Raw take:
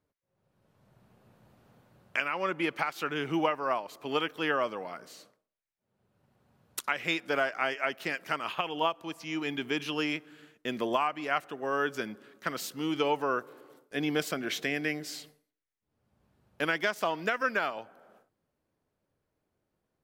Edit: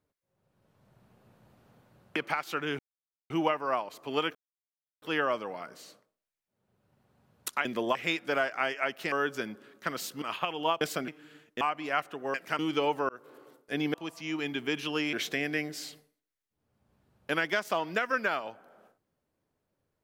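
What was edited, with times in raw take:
2.16–2.65 cut
3.28 insert silence 0.51 s
4.33 insert silence 0.67 s
8.13–8.38 swap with 11.72–12.82
8.97–10.16 swap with 14.17–14.44
10.69–10.99 move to 6.96
13.32–13.59 fade in

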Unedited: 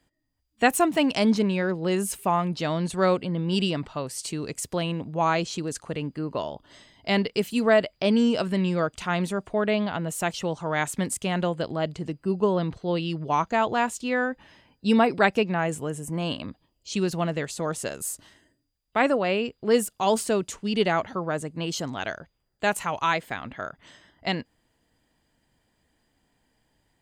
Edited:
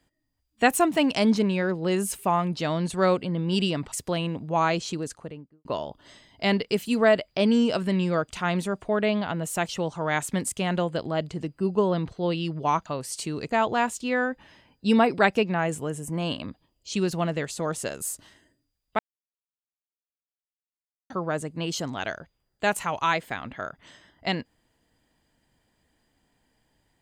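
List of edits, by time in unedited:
3.92–4.57 move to 13.51
5.54–6.3 studio fade out
18.99–21.1 mute

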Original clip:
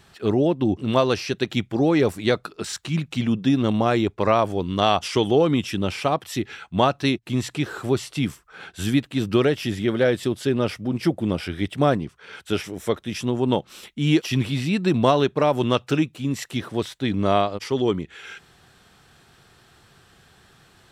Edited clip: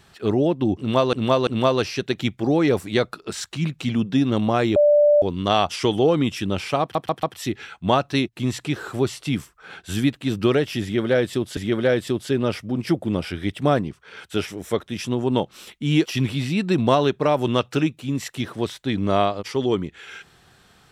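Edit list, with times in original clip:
0.79–1.13 loop, 3 plays
4.08–4.54 bleep 589 Hz -11.5 dBFS
6.13 stutter 0.14 s, 4 plays
9.73–10.47 loop, 2 plays

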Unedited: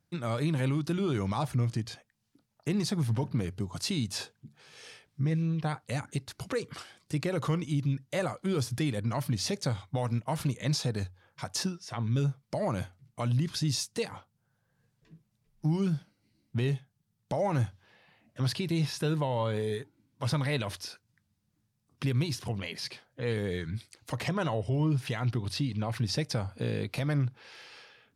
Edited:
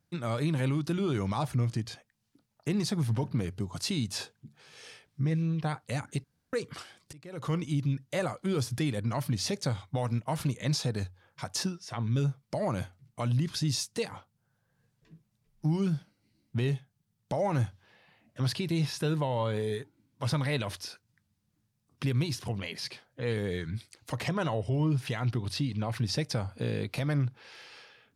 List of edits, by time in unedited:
6.24–6.53 room tone
7.13–7.55 fade in quadratic, from -23 dB

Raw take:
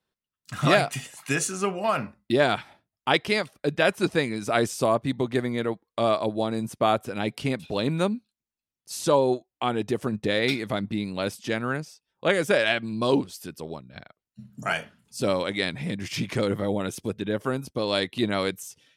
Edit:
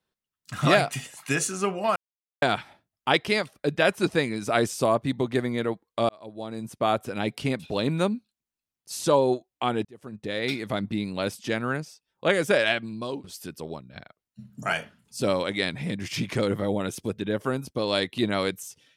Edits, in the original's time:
1.96–2.42 mute
6.09–7.07 fade in
9.85–10.81 fade in
12.68–13.24 fade out, to -21 dB

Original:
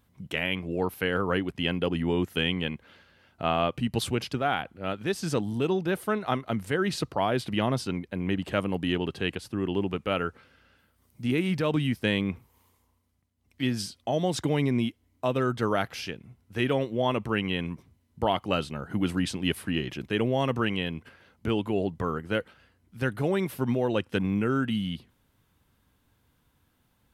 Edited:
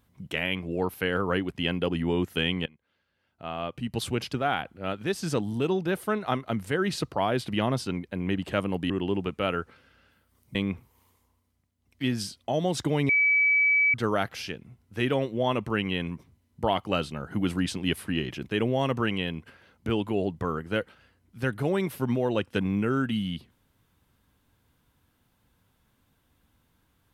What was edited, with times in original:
2.66–4.21 fade in quadratic, from -22.5 dB
8.9–9.57 cut
11.22–12.14 cut
14.68–15.53 bleep 2290 Hz -18.5 dBFS

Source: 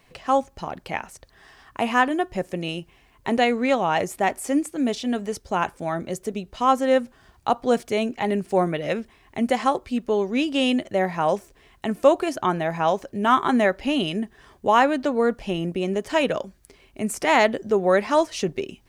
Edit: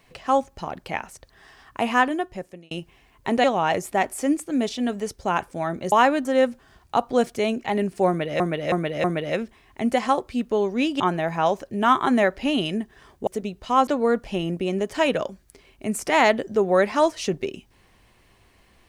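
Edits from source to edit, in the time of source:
2.02–2.71 fade out
3.44–3.7 cut
6.18–6.78 swap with 14.69–15.02
8.61–8.93 loop, 4 plays
10.57–12.42 cut

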